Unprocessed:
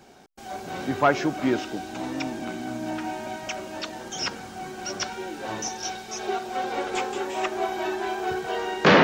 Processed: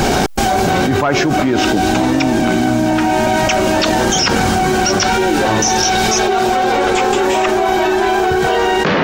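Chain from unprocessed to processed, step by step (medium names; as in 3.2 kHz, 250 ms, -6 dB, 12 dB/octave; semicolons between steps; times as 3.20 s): bass shelf 90 Hz +11.5 dB; level flattener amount 100%; trim -1 dB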